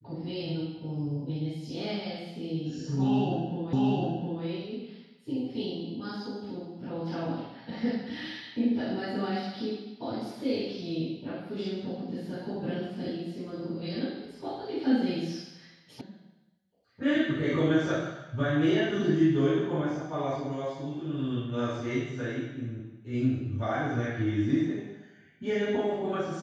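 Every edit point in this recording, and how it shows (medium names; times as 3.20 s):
3.73 s: repeat of the last 0.71 s
16.01 s: sound stops dead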